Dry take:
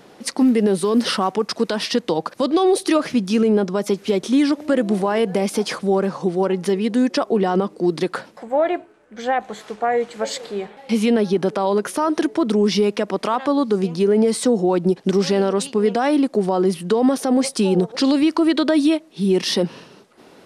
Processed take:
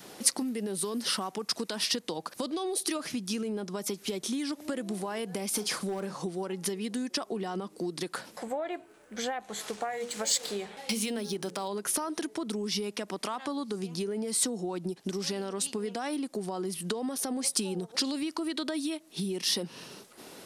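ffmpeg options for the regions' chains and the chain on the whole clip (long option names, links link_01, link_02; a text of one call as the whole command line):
ffmpeg -i in.wav -filter_complex "[0:a]asettb=1/sr,asplit=3[link_01][link_02][link_03];[link_01]atrim=end=5.514[link_04];[link_02]atrim=start=5.51:end=6.23,asetpts=PTS-STARTPTS,afade=type=in:duration=0.004:curve=qsin,afade=type=out:start_time=0.716:duration=0.004:curve=qsin,asoftclip=type=hard:threshold=-11.5dB,asplit=2[link_05][link_06];[link_06]adelay=43,volume=-12dB[link_07];[link_05][link_07]amix=inputs=2:normalize=0,atrim=end_sample=31752[link_08];[link_03]atrim=start=6.226[link_09];[link_04][link_08]acrossfade=duration=0.004:curve1=hsin:curve2=qsin[link_10];[link_10][link_09]acrossfade=duration=0.004:curve1=qsin:curve2=hsin,asettb=1/sr,asplit=3[link_11][link_12][link_13];[link_11]atrim=end=9.734[link_14];[link_12]atrim=start=9.73:end=11.68,asetpts=PTS-STARTPTS,afade=type=in:duration=0.004:curve=qsin,afade=type=out:start_time=1.946:duration=0.004:curve=qsin,highshelf=frequency=5300:gain=12,bandreject=frequency=60:width_type=h:width=6,bandreject=frequency=120:width_type=h:width=6,bandreject=frequency=180:width_type=h:width=6,bandreject=frequency=240:width_type=h:width=6,bandreject=frequency=300:width_type=h:width=6,bandreject=frequency=360:width_type=h:width=6,bandreject=frequency=420:width_type=h:width=6,bandreject=frequency=480:width_type=h:width=6,bandreject=frequency=540:width_type=h:width=6,adynamicsmooth=sensitivity=7.5:basefreq=7300[link_15];[link_13]atrim=start=11.676[link_16];[link_14][link_15]acrossfade=duration=0.004:curve1=hsin:curve2=qsin[link_17];[link_17][link_16]acrossfade=duration=0.004:curve1=qsin:curve2=hsin,adynamicequalizer=threshold=0.02:dfrequency=520:dqfactor=3:tfrequency=520:tqfactor=3:attack=5:release=100:ratio=0.375:range=2.5:mode=cutabove:tftype=bell,acompressor=threshold=-29dB:ratio=6,aemphasis=mode=production:type=75kf,volume=-3dB" out.wav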